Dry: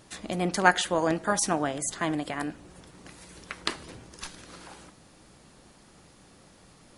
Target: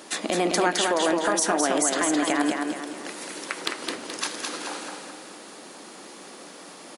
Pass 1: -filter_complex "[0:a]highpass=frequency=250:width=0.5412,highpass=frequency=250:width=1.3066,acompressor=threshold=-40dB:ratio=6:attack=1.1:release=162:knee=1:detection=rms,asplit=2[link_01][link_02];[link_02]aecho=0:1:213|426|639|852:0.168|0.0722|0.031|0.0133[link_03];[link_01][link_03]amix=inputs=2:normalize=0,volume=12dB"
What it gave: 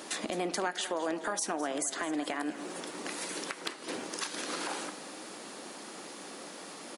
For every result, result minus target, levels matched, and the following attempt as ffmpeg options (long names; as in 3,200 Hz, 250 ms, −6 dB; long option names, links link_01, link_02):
downward compressor: peak gain reduction +9 dB; echo-to-direct −11.5 dB
-filter_complex "[0:a]highpass=frequency=250:width=0.5412,highpass=frequency=250:width=1.3066,acompressor=threshold=-29dB:ratio=6:attack=1.1:release=162:knee=1:detection=rms,asplit=2[link_01][link_02];[link_02]aecho=0:1:213|426|639|852:0.168|0.0722|0.031|0.0133[link_03];[link_01][link_03]amix=inputs=2:normalize=0,volume=12dB"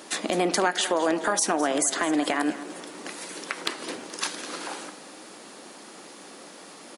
echo-to-direct −11.5 dB
-filter_complex "[0:a]highpass=frequency=250:width=0.5412,highpass=frequency=250:width=1.3066,acompressor=threshold=-29dB:ratio=6:attack=1.1:release=162:knee=1:detection=rms,asplit=2[link_01][link_02];[link_02]aecho=0:1:213|426|639|852|1065:0.631|0.271|0.117|0.0502|0.0216[link_03];[link_01][link_03]amix=inputs=2:normalize=0,volume=12dB"